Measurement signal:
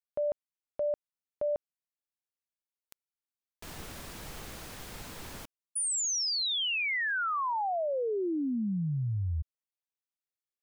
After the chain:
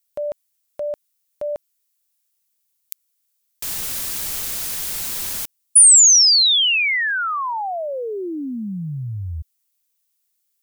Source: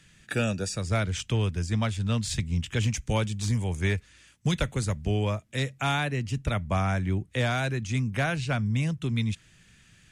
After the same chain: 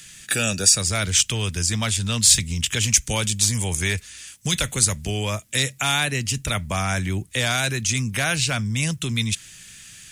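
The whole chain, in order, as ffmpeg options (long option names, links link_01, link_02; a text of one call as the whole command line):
ffmpeg -i in.wav -af "alimiter=limit=-22.5dB:level=0:latency=1:release=13,crystalizer=i=7:c=0,volume=3.5dB" out.wav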